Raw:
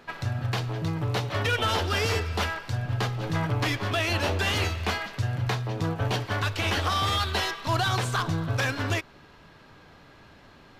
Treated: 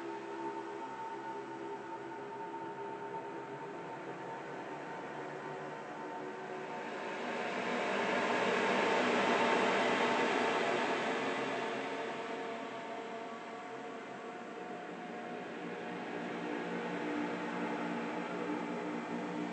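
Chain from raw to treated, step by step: wide varispeed 0.553×; Bessel high-pass 280 Hz, order 8; Paulstretch 22×, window 0.25 s, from 5.05; gain -1 dB

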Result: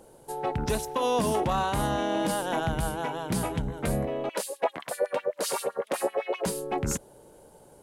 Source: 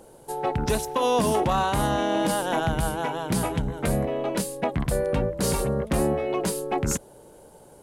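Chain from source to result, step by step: 4.29–6.46 LFO high-pass sine 7.8 Hz 460–3300 Hz; gain -3.5 dB

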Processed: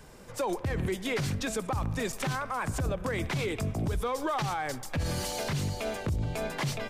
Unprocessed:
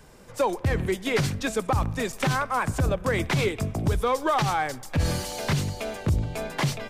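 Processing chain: limiter -23 dBFS, peak gain reduction 8.5 dB

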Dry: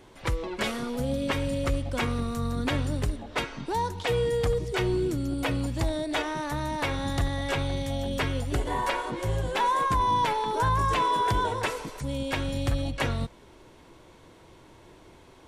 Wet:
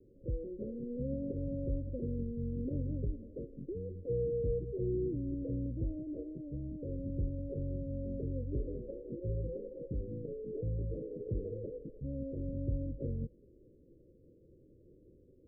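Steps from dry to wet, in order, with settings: steep low-pass 550 Hz 96 dB/oct; gain -7.5 dB

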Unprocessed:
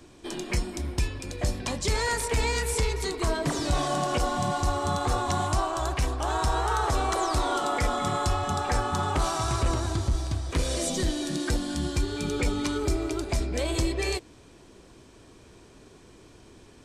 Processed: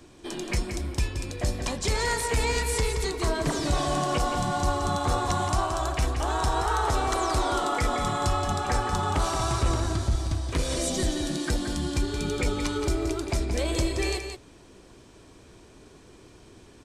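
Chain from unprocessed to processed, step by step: echo 0.174 s -8 dB

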